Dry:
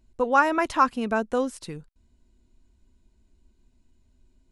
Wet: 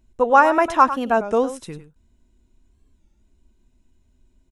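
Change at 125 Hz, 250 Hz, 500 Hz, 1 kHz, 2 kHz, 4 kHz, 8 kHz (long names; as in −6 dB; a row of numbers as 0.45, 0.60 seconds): +1.5, +3.0, +7.0, +6.5, +3.5, +1.5, +2.0 decibels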